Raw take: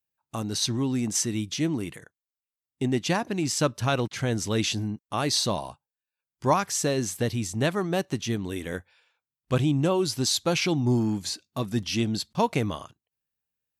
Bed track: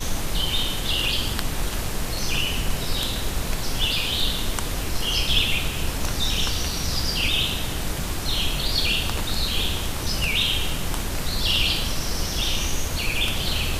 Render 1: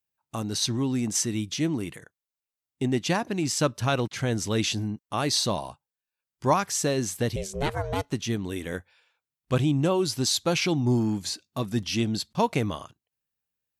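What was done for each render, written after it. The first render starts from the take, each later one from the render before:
0:07.36–0:08.12: ring modulation 290 Hz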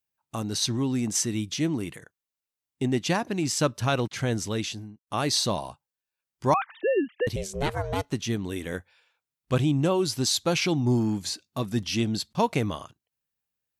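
0:04.31–0:05.07: fade out
0:06.54–0:07.27: three sine waves on the formant tracks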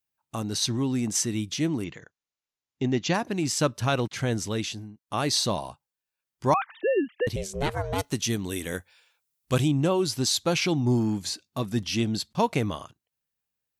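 0:01.84–0:03.14: linear-phase brick-wall low-pass 7,400 Hz
0:07.98–0:09.68: high-shelf EQ 4,800 Hz +12 dB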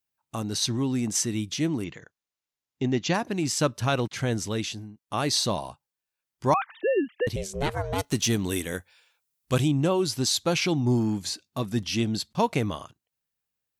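0:08.04–0:08.62: leveller curve on the samples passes 1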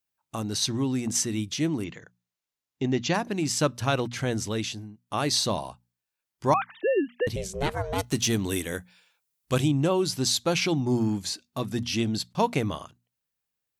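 mains-hum notches 60/120/180/240 Hz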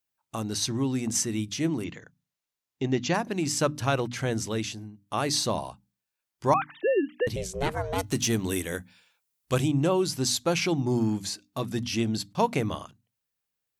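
mains-hum notches 50/100/150/200/250/300 Hz
dynamic equaliser 3,700 Hz, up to −4 dB, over −40 dBFS, Q 1.7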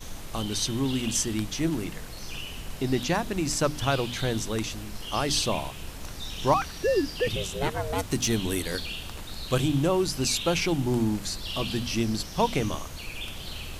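mix in bed track −13 dB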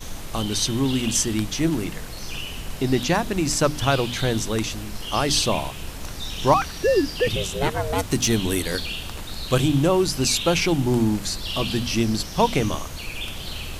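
level +5 dB

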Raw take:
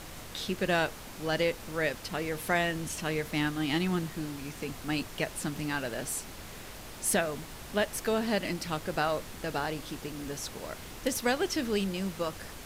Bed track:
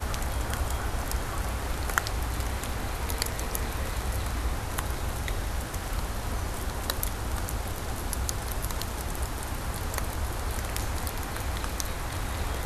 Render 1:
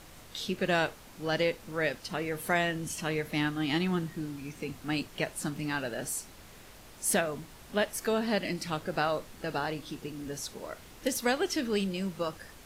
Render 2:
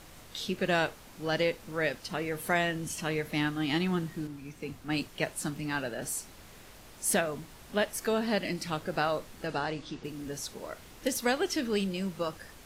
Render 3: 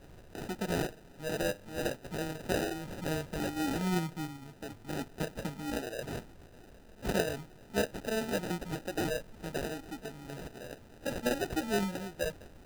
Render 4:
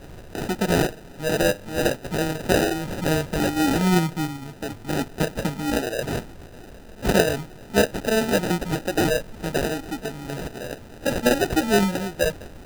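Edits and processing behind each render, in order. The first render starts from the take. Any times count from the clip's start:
noise reduction from a noise print 7 dB
0:04.27–0:06.02: multiband upward and downward expander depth 40%; 0:09.47–0:10.03: low-pass filter 11,000 Hz → 5,900 Hz 24 dB per octave
flanger 0.32 Hz, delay 0.3 ms, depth 9.6 ms, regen +8%; decimation without filtering 40×
level +12 dB

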